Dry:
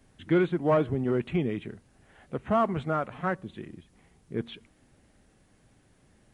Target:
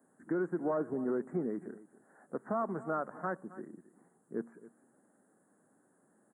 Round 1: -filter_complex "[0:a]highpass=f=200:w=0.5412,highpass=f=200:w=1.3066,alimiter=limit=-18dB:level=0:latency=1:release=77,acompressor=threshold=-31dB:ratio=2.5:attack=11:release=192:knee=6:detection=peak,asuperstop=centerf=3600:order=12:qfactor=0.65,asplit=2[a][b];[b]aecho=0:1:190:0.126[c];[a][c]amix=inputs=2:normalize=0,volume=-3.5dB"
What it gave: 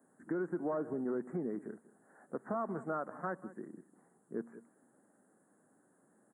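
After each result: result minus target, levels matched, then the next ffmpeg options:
echo 81 ms early; compressor: peak gain reduction +3.5 dB
-filter_complex "[0:a]highpass=f=200:w=0.5412,highpass=f=200:w=1.3066,alimiter=limit=-18dB:level=0:latency=1:release=77,acompressor=threshold=-31dB:ratio=2.5:attack=11:release=192:knee=6:detection=peak,asuperstop=centerf=3600:order=12:qfactor=0.65,asplit=2[a][b];[b]aecho=0:1:271:0.126[c];[a][c]amix=inputs=2:normalize=0,volume=-3.5dB"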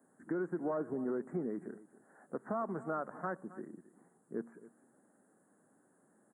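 compressor: peak gain reduction +3.5 dB
-filter_complex "[0:a]highpass=f=200:w=0.5412,highpass=f=200:w=1.3066,alimiter=limit=-18dB:level=0:latency=1:release=77,acompressor=threshold=-25dB:ratio=2.5:attack=11:release=192:knee=6:detection=peak,asuperstop=centerf=3600:order=12:qfactor=0.65,asplit=2[a][b];[b]aecho=0:1:271:0.126[c];[a][c]amix=inputs=2:normalize=0,volume=-3.5dB"

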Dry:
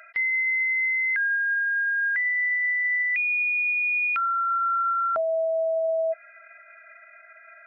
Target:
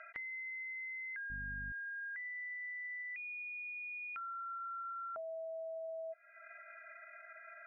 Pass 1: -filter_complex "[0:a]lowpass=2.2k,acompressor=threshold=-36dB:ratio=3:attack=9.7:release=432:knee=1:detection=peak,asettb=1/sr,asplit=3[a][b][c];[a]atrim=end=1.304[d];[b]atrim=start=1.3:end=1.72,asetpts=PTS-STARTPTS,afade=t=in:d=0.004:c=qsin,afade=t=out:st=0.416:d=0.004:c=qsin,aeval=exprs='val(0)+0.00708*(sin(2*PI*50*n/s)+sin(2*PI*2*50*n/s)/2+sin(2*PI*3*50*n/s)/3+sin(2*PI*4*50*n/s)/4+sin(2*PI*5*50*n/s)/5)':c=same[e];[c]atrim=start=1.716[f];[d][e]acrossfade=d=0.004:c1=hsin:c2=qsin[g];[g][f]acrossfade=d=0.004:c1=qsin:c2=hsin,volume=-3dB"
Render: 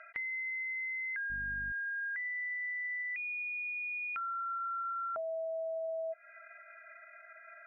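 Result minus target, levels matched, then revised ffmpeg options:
compressor: peak gain reduction -6.5 dB
-filter_complex "[0:a]lowpass=2.2k,acompressor=threshold=-45.5dB:ratio=3:attack=9.7:release=432:knee=1:detection=peak,asettb=1/sr,asplit=3[a][b][c];[a]atrim=end=1.304[d];[b]atrim=start=1.3:end=1.72,asetpts=PTS-STARTPTS,afade=t=in:d=0.004:c=qsin,afade=t=out:st=0.416:d=0.004:c=qsin,aeval=exprs='val(0)+0.00708*(sin(2*PI*50*n/s)+sin(2*PI*2*50*n/s)/2+sin(2*PI*3*50*n/s)/3+sin(2*PI*4*50*n/s)/4+sin(2*PI*5*50*n/s)/5)':c=same[e];[c]atrim=start=1.716[f];[d][e]acrossfade=d=0.004:c1=hsin:c2=qsin[g];[g][f]acrossfade=d=0.004:c1=qsin:c2=hsin,volume=-3dB"

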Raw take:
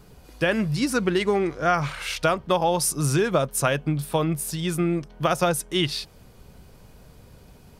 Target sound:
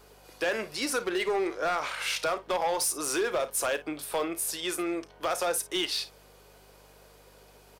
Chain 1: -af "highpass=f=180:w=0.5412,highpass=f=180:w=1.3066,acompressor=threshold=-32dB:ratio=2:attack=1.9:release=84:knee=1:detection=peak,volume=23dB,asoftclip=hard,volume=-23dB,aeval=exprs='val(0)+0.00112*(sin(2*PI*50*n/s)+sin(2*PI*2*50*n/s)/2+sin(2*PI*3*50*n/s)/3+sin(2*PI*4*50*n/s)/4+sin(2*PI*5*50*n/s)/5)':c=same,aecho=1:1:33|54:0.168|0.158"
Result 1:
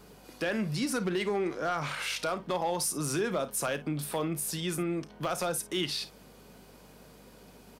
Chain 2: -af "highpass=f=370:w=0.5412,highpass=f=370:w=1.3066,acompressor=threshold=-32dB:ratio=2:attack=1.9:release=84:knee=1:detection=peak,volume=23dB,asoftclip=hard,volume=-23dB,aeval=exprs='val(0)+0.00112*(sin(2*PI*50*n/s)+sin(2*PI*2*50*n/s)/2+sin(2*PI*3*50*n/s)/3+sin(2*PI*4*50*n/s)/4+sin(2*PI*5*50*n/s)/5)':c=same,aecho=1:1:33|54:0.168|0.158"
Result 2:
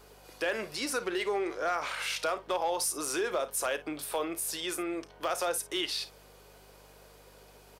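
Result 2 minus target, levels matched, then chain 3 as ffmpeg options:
compressor: peak gain reduction +4 dB
-af "highpass=f=370:w=0.5412,highpass=f=370:w=1.3066,acompressor=threshold=-24.5dB:ratio=2:attack=1.9:release=84:knee=1:detection=peak,volume=23dB,asoftclip=hard,volume=-23dB,aeval=exprs='val(0)+0.00112*(sin(2*PI*50*n/s)+sin(2*PI*2*50*n/s)/2+sin(2*PI*3*50*n/s)/3+sin(2*PI*4*50*n/s)/4+sin(2*PI*5*50*n/s)/5)':c=same,aecho=1:1:33|54:0.168|0.158"

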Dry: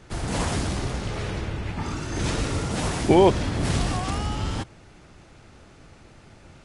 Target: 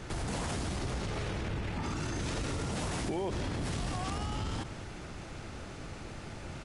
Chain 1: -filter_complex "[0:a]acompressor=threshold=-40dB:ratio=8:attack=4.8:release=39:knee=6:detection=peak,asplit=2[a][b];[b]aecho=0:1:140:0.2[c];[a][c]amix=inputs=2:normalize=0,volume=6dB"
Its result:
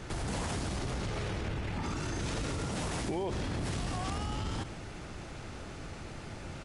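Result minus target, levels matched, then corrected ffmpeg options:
echo 59 ms early
-filter_complex "[0:a]acompressor=threshold=-40dB:ratio=8:attack=4.8:release=39:knee=6:detection=peak,asplit=2[a][b];[b]aecho=0:1:199:0.2[c];[a][c]amix=inputs=2:normalize=0,volume=6dB"

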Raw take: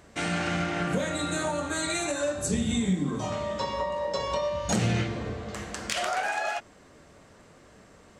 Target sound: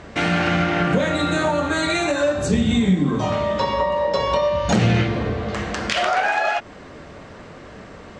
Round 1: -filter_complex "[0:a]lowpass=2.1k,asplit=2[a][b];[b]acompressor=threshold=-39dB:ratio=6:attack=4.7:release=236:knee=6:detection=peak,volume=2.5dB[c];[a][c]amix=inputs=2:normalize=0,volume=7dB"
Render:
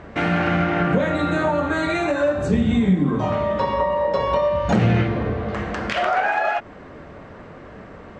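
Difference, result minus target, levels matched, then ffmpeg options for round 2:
4000 Hz band -7.0 dB
-filter_complex "[0:a]lowpass=4.2k,asplit=2[a][b];[b]acompressor=threshold=-39dB:ratio=6:attack=4.7:release=236:knee=6:detection=peak,volume=2.5dB[c];[a][c]amix=inputs=2:normalize=0,volume=7dB"

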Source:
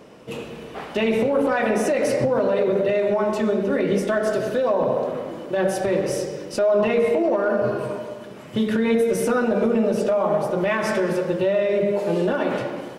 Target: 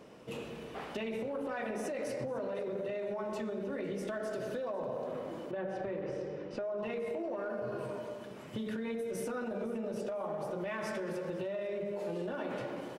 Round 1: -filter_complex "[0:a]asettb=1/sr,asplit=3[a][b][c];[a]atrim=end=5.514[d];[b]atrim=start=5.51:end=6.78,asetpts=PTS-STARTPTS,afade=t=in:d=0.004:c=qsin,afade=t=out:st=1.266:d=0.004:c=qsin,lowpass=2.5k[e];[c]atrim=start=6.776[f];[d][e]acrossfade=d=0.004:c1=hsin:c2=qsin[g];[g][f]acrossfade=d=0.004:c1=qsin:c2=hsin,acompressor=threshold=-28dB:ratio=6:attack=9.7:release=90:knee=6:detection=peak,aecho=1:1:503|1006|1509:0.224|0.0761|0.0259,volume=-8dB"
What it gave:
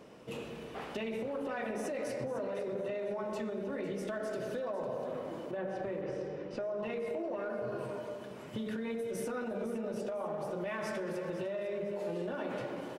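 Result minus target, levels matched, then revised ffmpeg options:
echo-to-direct +7.5 dB
-filter_complex "[0:a]asettb=1/sr,asplit=3[a][b][c];[a]atrim=end=5.514[d];[b]atrim=start=5.51:end=6.78,asetpts=PTS-STARTPTS,afade=t=in:d=0.004:c=qsin,afade=t=out:st=1.266:d=0.004:c=qsin,lowpass=2.5k[e];[c]atrim=start=6.776[f];[d][e]acrossfade=d=0.004:c1=hsin:c2=qsin[g];[g][f]acrossfade=d=0.004:c1=qsin:c2=hsin,acompressor=threshold=-28dB:ratio=6:attack=9.7:release=90:knee=6:detection=peak,aecho=1:1:503|1006|1509:0.0944|0.0321|0.0109,volume=-8dB"

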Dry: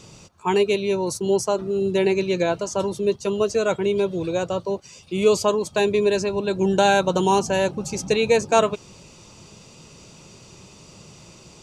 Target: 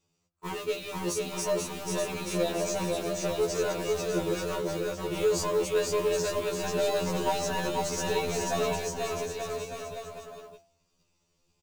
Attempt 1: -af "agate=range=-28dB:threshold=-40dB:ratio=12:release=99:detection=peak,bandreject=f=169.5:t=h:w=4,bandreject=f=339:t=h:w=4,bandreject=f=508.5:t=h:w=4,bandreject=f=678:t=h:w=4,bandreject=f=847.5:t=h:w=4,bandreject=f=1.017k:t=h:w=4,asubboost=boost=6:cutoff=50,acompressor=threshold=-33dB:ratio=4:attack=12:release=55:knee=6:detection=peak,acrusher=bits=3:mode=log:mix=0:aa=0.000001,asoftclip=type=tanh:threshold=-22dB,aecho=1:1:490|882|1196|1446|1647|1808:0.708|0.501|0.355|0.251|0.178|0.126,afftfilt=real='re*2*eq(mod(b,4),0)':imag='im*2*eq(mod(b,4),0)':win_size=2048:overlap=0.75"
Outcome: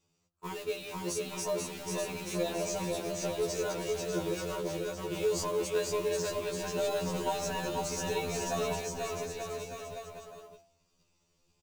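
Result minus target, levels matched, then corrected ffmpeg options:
compressor: peak gain reduction +7 dB
-af "agate=range=-28dB:threshold=-40dB:ratio=12:release=99:detection=peak,bandreject=f=169.5:t=h:w=4,bandreject=f=339:t=h:w=4,bandreject=f=508.5:t=h:w=4,bandreject=f=678:t=h:w=4,bandreject=f=847.5:t=h:w=4,bandreject=f=1.017k:t=h:w=4,asubboost=boost=6:cutoff=50,acompressor=threshold=-24dB:ratio=4:attack=12:release=55:knee=6:detection=peak,acrusher=bits=3:mode=log:mix=0:aa=0.000001,asoftclip=type=tanh:threshold=-22dB,aecho=1:1:490|882|1196|1446|1647|1808:0.708|0.501|0.355|0.251|0.178|0.126,afftfilt=real='re*2*eq(mod(b,4),0)':imag='im*2*eq(mod(b,4),0)':win_size=2048:overlap=0.75"

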